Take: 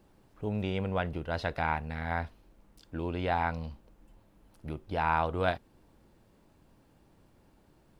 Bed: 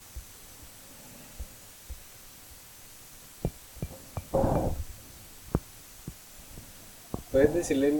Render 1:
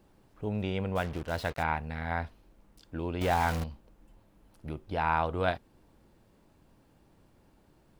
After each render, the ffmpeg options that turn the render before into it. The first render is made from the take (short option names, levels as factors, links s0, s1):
-filter_complex "[0:a]asplit=3[s0][s1][s2];[s0]afade=t=out:st=0.95:d=0.02[s3];[s1]acrusher=bits=6:mix=0:aa=0.5,afade=t=in:st=0.95:d=0.02,afade=t=out:st=1.62:d=0.02[s4];[s2]afade=t=in:st=1.62:d=0.02[s5];[s3][s4][s5]amix=inputs=3:normalize=0,asettb=1/sr,asplit=3[s6][s7][s8];[s6]atrim=end=3.214[s9];[s7]atrim=start=3.21:end=3.64,asetpts=PTS-STARTPTS,afade=t=in:d=0.004:c=qsin,afade=t=out:st=0.426:d=0.004:c=qsin,aeval=exprs='val(0)+0.5*0.0299*sgn(val(0))':c=same[s10];[s8]atrim=start=3.636[s11];[s9][s10]acrossfade=d=0.004:c1=hsin:c2=qsin[s12];[s12][s11]acrossfade=d=0.004:c1=qsin:c2=hsin"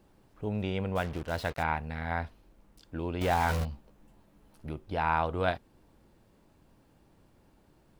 -filter_complex "[0:a]asettb=1/sr,asplit=3[s0][s1][s2];[s0]atrim=end=3.484[s3];[s1]atrim=start=3.48:end=4.66,asetpts=PTS-STARTPTS,afade=t=in:d=0.004:c=qsin,afade=t=out:st=1.176:d=0.004:c=qsin,asplit=2[s4][s5];[s5]adelay=14,volume=0.631[s6];[s4][s6]amix=inputs=2:normalize=0,atrim=end_sample=52038[s7];[s2]atrim=start=4.656[s8];[s3][s7]acrossfade=d=0.004:c1=hsin:c2=qsin[s9];[s9][s8]acrossfade=d=0.004:c1=qsin:c2=hsin"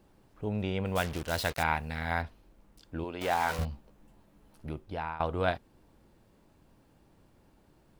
-filter_complex "[0:a]asettb=1/sr,asplit=3[s0][s1][s2];[s0]atrim=end=0.854[s3];[s1]atrim=start=0.85:end=2.22,asetpts=PTS-STARTPTS,afade=t=in:d=0.004:c=qsin,afade=t=out:st=1.366:d=0.004:c=qsin,highshelf=f=3100:g=12[s4];[s2]atrim=start=2.216[s5];[s3][s4]acrossfade=d=0.004:c1=hsin:c2=qsin[s6];[s6][s5]acrossfade=d=0.004:c1=qsin:c2=hsin,asettb=1/sr,asplit=3[s7][s8][s9];[s7]atrim=end=3.044[s10];[s8]atrim=start=3.04:end=3.59,asetpts=PTS-STARTPTS,afade=t=in:d=0.004:c=qsin,afade=t=out:st=0.546:d=0.004:c=qsin,highpass=f=430:p=1[s11];[s9]atrim=start=3.586[s12];[s10][s11]acrossfade=d=0.004:c1=hsin:c2=qsin[s13];[s13][s12]acrossfade=d=0.004:c1=qsin:c2=hsin,asplit=2[s14][s15];[s14]atrim=end=5.2,asetpts=PTS-STARTPTS,afade=t=out:st=4.77:d=0.43:silence=0.125893[s16];[s15]atrim=start=5.2,asetpts=PTS-STARTPTS,afade=t=in:d=0.004:c=hsin:silence=0.125893[s17];[s16][s17]concat=n=2:v=0:a=1"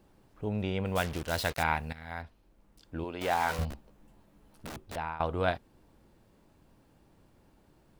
-filter_complex "[0:a]asettb=1/sr,asplit=3[s0][s1][s2];[s0]atrim=end=3.704[s3];[s1]atrim=start=3.7:end=4.96,asetpts=PTS-STARTPTS,afade=t=in:d=0.004:c=qsin,afade=t=out:st=1.256:d=0.004:c=qsin,aeval=exprs='(mod(63.1*val(0)+1,2)-1)/63.1':c=same[s4];[s2]atrim=start=4.956[s5];[s3][s4]acrossfade=d=0.004:c1=hsin:c2=qsin[s6];[s6][s5]acrossfade=d=0.004:c1=qsin:c2=hsin,asplit=2[s7][s8];[s7]atrim=end=1.93,asetpts=PTS-STARTPTS,afade=t=out:st=1.926:d=0.004:c=hsin:silence=0.211349[s9];[s8]atrim=start=1.93,asetpts=PTS-STARTPTS,afade=t=in:d=1.14:silence=0.211349[s10];[s9][s10]concat=n=2:v=0:a=1"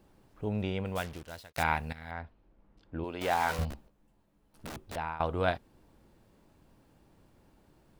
-filter_complex "[0:a]asettb=1/sr,asplit=3[s0][s1][s2];[s0]atrim=end=2.114[s3];[s1]atrim=start=2.11:end=3.04,asetpts=PTS-STARTPTS,afade=t=in:d=0.004:c=qsin,afade=t=out:st=0.926:d=0.004:c=qsin,adynamicsmooth=sensitivity=1:basefreq=3000[s4];[s2]atrim=start=3.036[s5];[s3][s4]acrossfade=d=0.004:c1=hsin:c2=qsin[s6];[s6][s5]acrossfade=d=0.004:c1=qsin:c2=hsin,asplit=4[s7][s8][s9][s10];[s7]atrim=end=1.54,asetpts=PTS-STARTPTS,afade=t=out:st=0.6:d=0.94[s11];[s8]atrim=start=1.54:end=3.88,asetpts=PTS-STARTPTS,afade=t=in:d=0.004:c=hsin,afade=t=out:st=2.16:d=0.18:c=log:silence=0.354813[s12];[s9]atrim=start=3.88:end=4.54,asetpts=PTS-STARTPTS,volume=0.355[s13];[s10]atrim=start=4.54,asetpts=PTS-STARTPTS,afade=t=in:d=0.18:c=log:silence=0.354813[s14];[s11][s12][s13][s14]concat=n=4:v=0:a=1"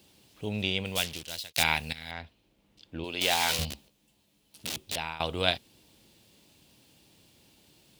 -af "highpass=79,highshelf=f=2100:t=q:w=1.5:g=13.5"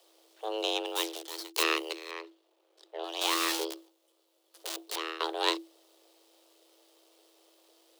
-af "aeval=exprs='if(lt(val(0),0),0.251*val(0),val(0))':c=same,afreqshift=330"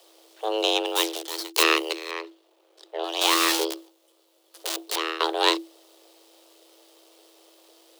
-af "volume=2.51,alimiter=limit=0.794:level=0:latency=1"